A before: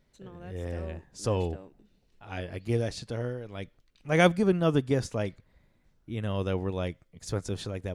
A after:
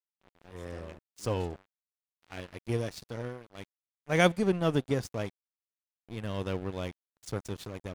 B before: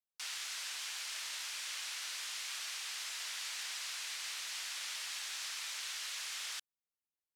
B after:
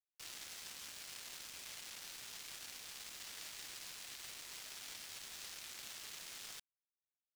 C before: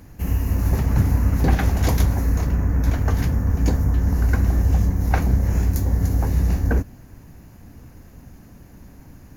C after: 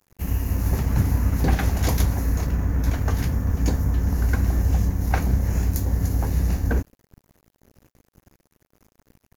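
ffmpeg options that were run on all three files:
-af "highshelf=f=3000:g=4,aeval=exprs='sgn(val(0))*max(abs(val(0))-0.0112,0)':c=same,volume=0.794"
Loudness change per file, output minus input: -2.5 LU, -8.5 LU, -2.5 LU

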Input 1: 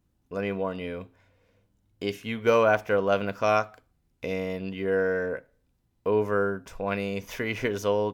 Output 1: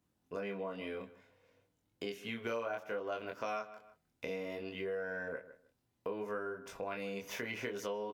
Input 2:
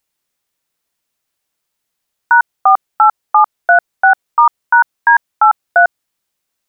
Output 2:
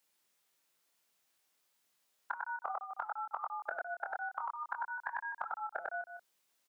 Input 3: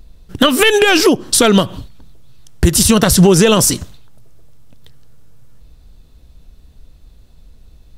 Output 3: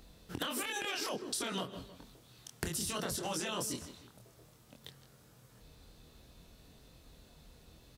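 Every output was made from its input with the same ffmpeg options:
-filter_complex "[0:a]flanger=delay=22.5:depth=3.3:speed=0.6,highpass=f=260:p=1,asplit=2[s0][s1];[s1]adelay=155,lowpass=f=3500:p=1,volume=0.106,asplit=2[s2][s3];[s3]adelay=155,lowpass=f=3500:p=1,volume=0.18[s4];[s2][s4]amix=inputs=2:normalize=0[s5];[s0][s5]amix=inputs=2:normalize=0,afftfilt=real='re*lt(hypot(re,im),0.891)':imag='im*lt(hypot(re,im),0.891)':win_size=1024:overlap=0.75,acrossover=split=500[s6][s7];[s7]alimiter=limit=0.237:level=0:latency=1:release=120[s8];[s6][s8]amix=inputs=2:normalize=0,acompressor=threshold=0.0112:ratio=4,volume=1.12"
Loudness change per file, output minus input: -13.5 LU, -28.0 LU, -26.0 LU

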